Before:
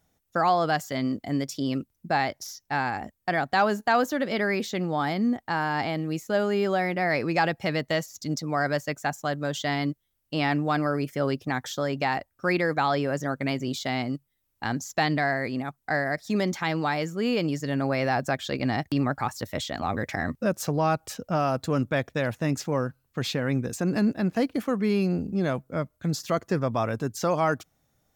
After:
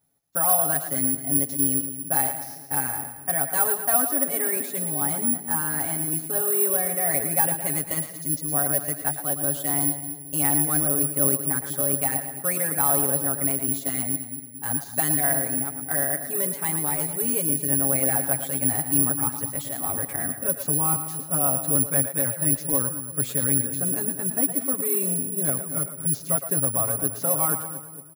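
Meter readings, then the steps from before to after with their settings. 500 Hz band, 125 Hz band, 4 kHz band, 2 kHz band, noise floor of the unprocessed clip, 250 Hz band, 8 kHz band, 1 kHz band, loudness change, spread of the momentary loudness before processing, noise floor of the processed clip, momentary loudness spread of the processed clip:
-4.0 dB, -2.0 dB, -9.0 dB, -6.0 dB, -75 dBFS, -3.5 dB, +20.5 dB, -4.5 dB, +5.0 dB, 6 LU, -39 dBFS, 6 LU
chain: HPF 47 Hz; high shelf 3700 Hz -11.5 dB; comb 7.2 ms, depth 99%; on a send: split-band echo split 420 Hz, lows 0.227 s, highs 0.113 s, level -9 dB; on the sum: careless resampling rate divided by 4×, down none, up zero stuff; gain -7.5 dB

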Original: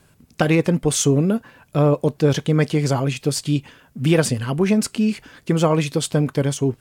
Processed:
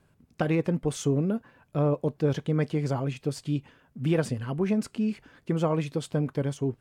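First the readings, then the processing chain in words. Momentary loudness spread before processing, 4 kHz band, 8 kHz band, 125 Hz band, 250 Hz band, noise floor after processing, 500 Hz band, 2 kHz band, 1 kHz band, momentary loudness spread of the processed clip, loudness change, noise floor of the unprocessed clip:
6 LU, -14.5 dB, -17.0 dB, -8.0 dB, -8.0 dB, -66 dBFS, -8.5 dB, -11.5 dB, -9.0 dB, 6 LU, -8.5 dB, -56 dBFS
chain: high shelf 2900 Hz -10.5 dB; gain -8 dB

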